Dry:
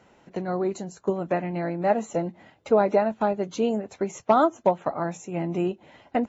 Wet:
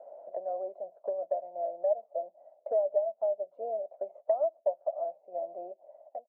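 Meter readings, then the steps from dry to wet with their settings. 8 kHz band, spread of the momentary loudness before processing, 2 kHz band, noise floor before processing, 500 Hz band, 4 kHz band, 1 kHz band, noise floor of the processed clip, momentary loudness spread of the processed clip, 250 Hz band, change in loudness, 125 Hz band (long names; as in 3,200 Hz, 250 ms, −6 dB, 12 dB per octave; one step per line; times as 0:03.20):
can't be measured, 10 LU, below −35 dB, −59 dBFS, −5.5 dB, below −40 dB, −12.5 dB, −71 dBFS, 13 LU, below −30 dB, −7.5 dB, below −40 dB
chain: fade-out on the ending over 1.02 s
flat-topped band-pass 620 Hz, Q 5
multiband upward and downward compressor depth 70%
level −1.5 dB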